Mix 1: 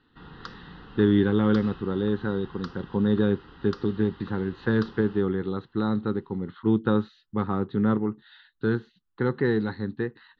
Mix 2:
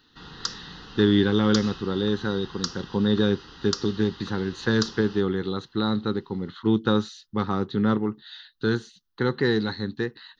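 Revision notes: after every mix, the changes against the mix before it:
master: remove high-frequency loss of the air 460 metres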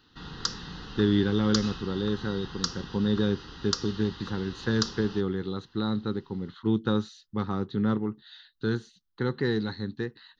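speech −6.5 dB
master: add low-shelf EQ 240 Hz +5.5 dB

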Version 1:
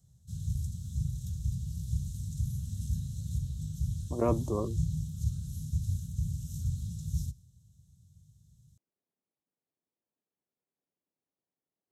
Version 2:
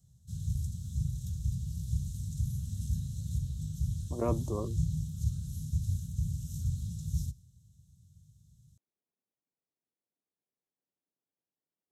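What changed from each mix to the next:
speech −3.5 dB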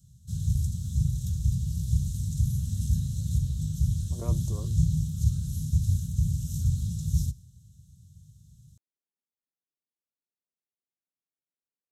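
speech −8.5 dB
background +7.0 dB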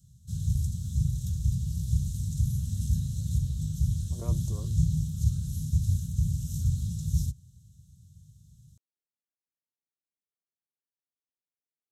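speech −3.0 dB
reverb: off

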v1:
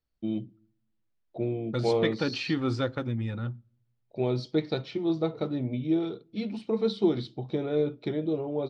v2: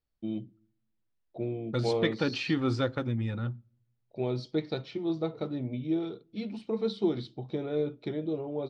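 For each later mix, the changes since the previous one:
first voice −3.5 dB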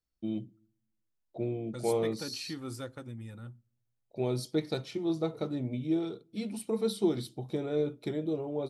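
second voice −12.0 dB
master: remove low-pass filter 4,600 Hz 24 dB per octave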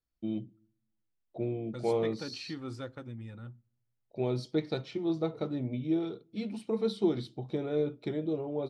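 master: add low-pass filter 4,400 Hz 12 dB per octave

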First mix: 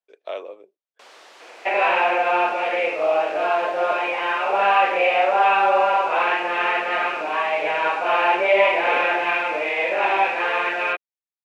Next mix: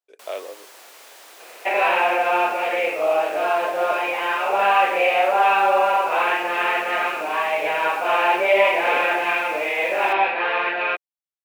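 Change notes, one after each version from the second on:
first sound: entry −0.80 s
master: remove low-pass filter 5,000 Hz 12 dB per octave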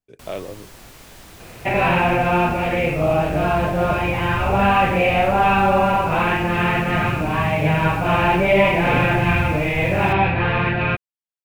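master: remove high-pass filter 440 Hz 24 dB per octave

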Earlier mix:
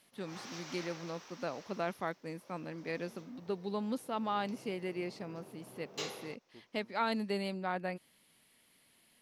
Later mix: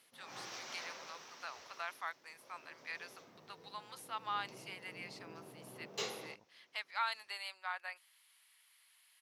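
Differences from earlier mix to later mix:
first voice: add high-pass filter 1,000 Hz 24 dB per octave
second voice: entry +2.95 s

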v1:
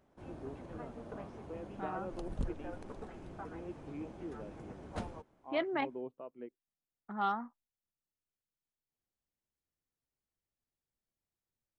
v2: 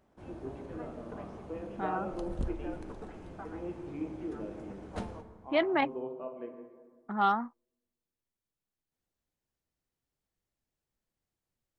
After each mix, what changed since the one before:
second voice +6.5 dB
reverb: on, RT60 1.6 s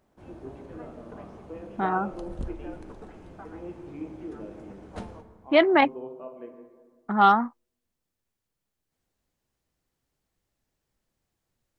second voice +9.0 dB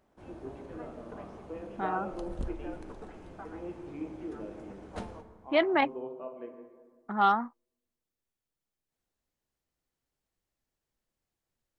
second voice −6.0 dB
master: add parametric band 120 Hz −3.5 dB 2.3 octaves

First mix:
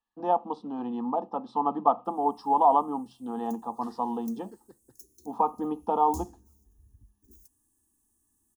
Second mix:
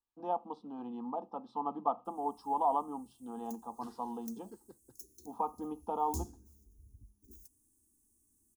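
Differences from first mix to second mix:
first voice −9.5 dB
second voice: send −10.5 dB
master: add Butterworth band-reject 1,800 Hz, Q 7.8

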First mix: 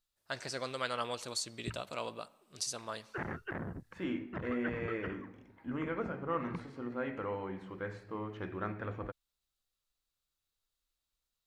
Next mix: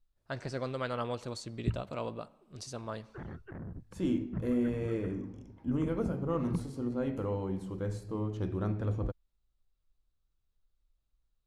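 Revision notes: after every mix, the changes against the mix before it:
second voice: remove low-pass with resonance 1,900 Hz, resonance Q 2.1
background −10.5 dB
master: add spectral tilt −3.5 dB per octave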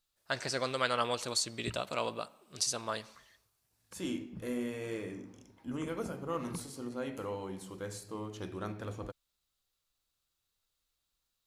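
first voice +5.0 dB
background: muted
master: add spectral tilt +3.5 dB per octave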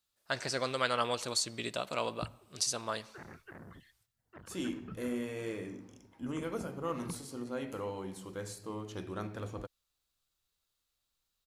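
second voice: entry +0.55 s
background: unmuted

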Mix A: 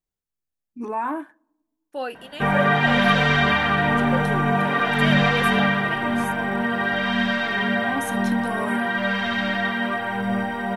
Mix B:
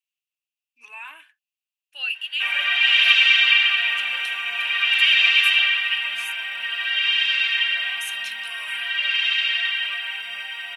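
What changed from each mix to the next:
first voice: send off
master: add high-pass with resonance 2,700 Hz, resonance Q 8.3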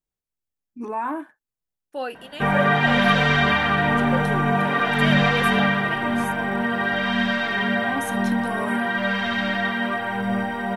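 master: remove high-pass with resonance 2,700 Hz, resonance Q 8.3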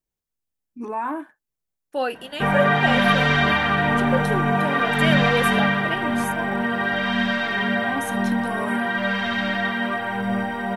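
second voice +5.0 dB

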